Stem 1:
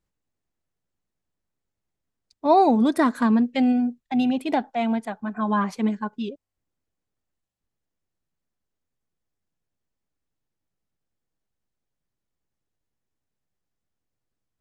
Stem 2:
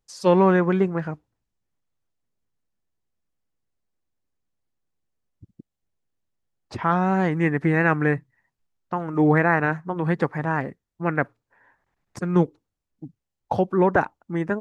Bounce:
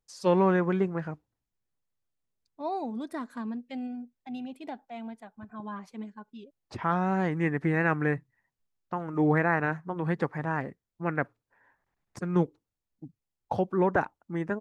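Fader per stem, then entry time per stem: −16.0, −6.0 decibels; 0.15, 0.00 seconds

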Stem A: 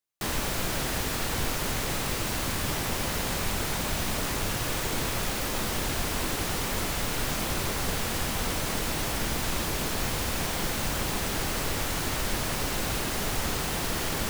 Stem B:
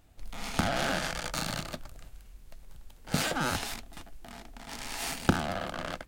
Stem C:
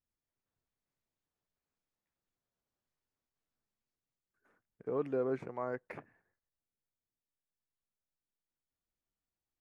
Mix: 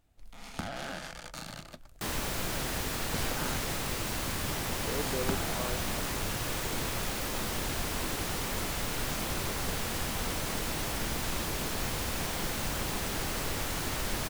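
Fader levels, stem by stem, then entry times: −4.0, −9.0, −2.5 decibels; 1.80, 0.00, 0.00 seconds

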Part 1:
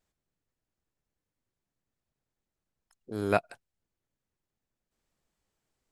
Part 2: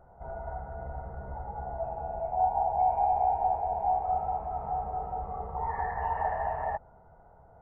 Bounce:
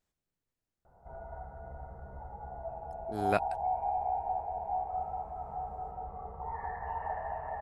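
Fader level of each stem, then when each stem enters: −3.5, −6.5 decibels; 0.00, 0.85 seconds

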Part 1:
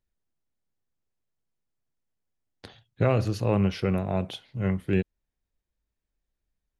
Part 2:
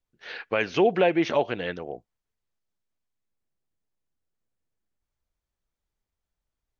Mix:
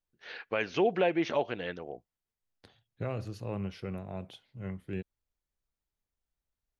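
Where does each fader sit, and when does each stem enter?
−12.5, −6.0 decibels; 0.00, 0.00 seconds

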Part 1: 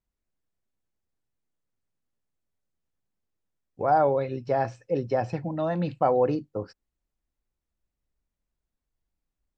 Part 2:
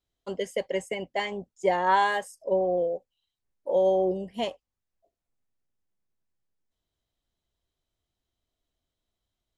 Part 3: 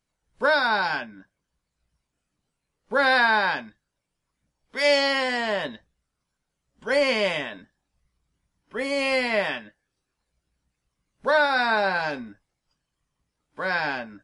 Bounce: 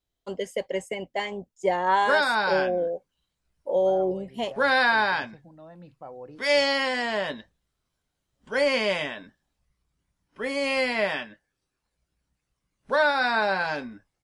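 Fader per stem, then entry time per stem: −19.5, 0.0, −1.5 decibels; 0.00, 0.00, 1.65 seconds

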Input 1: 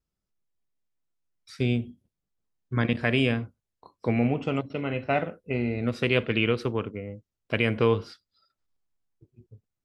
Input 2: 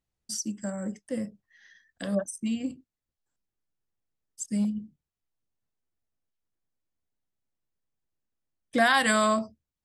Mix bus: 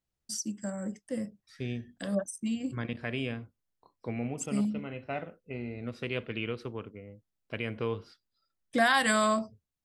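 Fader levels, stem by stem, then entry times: −10.5, −2.5 decibels; 0.00, 0.00 seconds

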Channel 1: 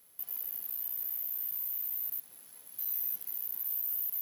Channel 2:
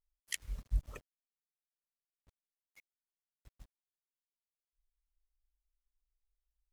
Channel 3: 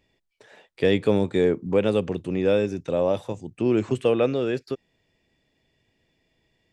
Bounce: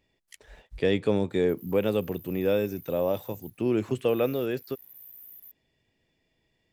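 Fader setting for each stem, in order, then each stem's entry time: −14.0, −11.5, −4.0 decibels; 1.30, 0.00, 0.00 seconds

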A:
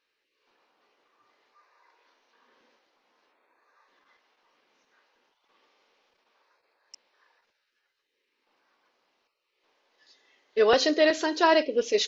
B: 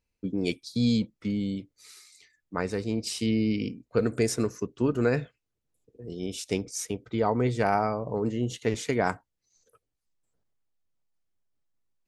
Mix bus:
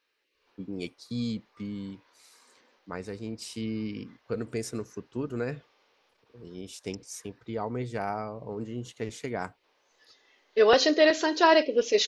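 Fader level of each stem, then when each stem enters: +1.0, −7.5 decibels; 0.00, 0.35 seconds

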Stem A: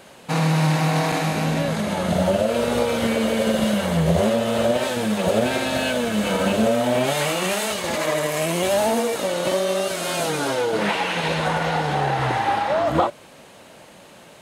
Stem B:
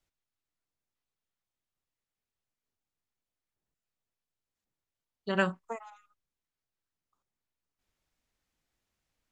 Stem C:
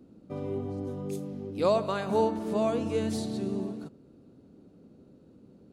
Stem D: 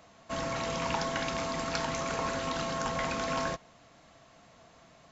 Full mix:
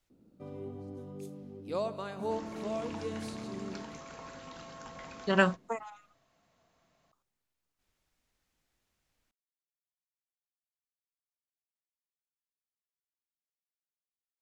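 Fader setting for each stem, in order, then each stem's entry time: muted, +3.0 dB, −9.0 dB, −14.5 dB; muted, 0.00 s, 0.10 s, 2.00 s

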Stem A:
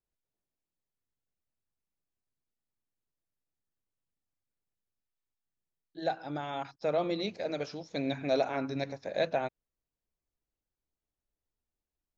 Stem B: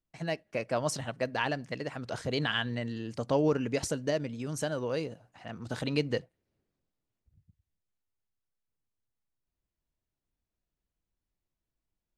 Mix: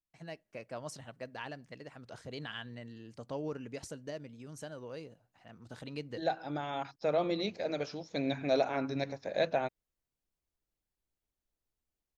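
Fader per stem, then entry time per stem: −0.5, −12.0 decibels; 0.20, 0.00 seconds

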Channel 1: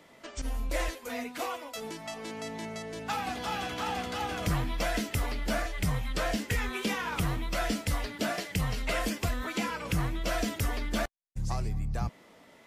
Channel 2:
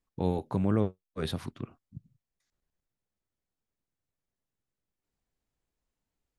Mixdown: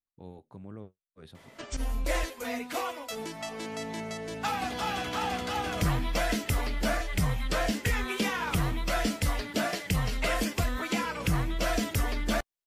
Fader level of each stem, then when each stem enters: +2.0, −17.5 decibels; 1.35, 0.00 seconds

